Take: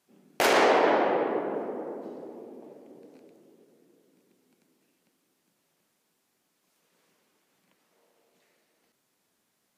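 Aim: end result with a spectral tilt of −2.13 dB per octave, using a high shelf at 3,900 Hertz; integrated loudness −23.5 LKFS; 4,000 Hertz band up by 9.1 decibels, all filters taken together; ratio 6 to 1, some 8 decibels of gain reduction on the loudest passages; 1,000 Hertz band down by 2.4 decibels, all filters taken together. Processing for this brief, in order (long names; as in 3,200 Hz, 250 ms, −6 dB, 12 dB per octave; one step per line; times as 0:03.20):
parametric band 1,000 Hz −4 dB
high-shelf EQ 3,900 Hz +6 dB
parametric band 4,000 Hz +8.5 dB
downward compressor 6 to 1, threshold −25 dBFS
level +7.5 dB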